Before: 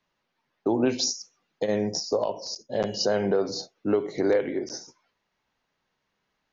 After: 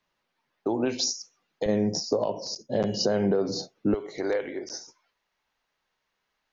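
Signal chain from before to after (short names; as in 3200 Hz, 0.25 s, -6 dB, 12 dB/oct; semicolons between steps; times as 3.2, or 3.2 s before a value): bell 160 Hz -3 dB 2.7 oct, from 1.66 s +8 dB, from 3.94 s -9.5 dB; compressor 2.5:1, threshold -22 dBFS, peak gain reduction 5.5 dB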